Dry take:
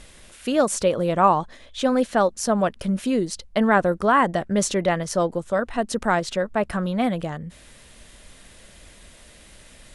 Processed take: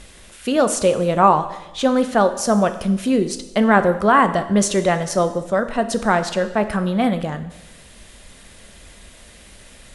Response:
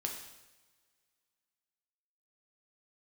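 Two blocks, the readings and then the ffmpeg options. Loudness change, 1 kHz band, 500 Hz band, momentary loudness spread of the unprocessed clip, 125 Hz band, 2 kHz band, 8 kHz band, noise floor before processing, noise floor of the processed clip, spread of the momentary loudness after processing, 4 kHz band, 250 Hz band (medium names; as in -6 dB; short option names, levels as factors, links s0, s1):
+4.0 dB, +4.0 dB, +3.5 dB, 7 LU, +4.0 dB, +3.5 dB, +3.5 dB, -49 dBFS, -45 dBFS, 7 LU, +3.5 dB, +4.5 dB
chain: -filter_complex "[0:a]asplit=2[s0][s1];[1:a]atrim=start_sample=2205[s2];[s1][s2]afir=irnorm=-1:irlink=0,volume=0.841[s3];[s0][s3]amix=inputs=2:normalize=0,volume=0.841"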